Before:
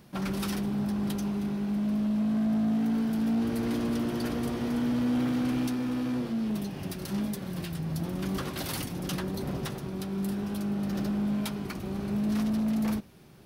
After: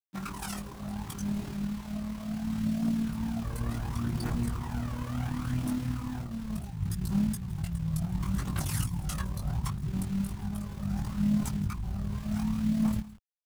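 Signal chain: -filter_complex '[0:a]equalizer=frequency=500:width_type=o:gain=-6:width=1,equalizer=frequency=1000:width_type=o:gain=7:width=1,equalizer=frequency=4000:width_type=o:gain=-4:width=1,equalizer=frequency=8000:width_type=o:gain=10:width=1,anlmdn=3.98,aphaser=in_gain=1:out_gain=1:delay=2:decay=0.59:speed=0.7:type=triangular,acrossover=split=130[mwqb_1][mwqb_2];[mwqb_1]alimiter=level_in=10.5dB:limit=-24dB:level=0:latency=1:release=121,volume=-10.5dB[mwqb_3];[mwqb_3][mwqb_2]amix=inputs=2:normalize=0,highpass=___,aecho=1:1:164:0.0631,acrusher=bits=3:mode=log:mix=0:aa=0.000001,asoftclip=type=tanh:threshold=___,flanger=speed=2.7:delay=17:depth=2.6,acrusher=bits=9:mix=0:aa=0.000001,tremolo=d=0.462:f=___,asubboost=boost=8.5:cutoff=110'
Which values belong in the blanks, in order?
53, -20.5dB, 37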